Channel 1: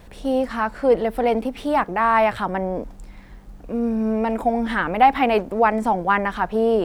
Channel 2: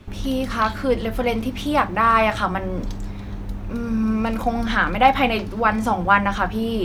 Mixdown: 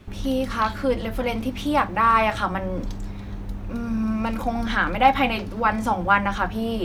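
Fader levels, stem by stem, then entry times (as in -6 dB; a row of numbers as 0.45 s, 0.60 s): -12.5 dB, -2.5 dB; 0.00 s, 0.00 s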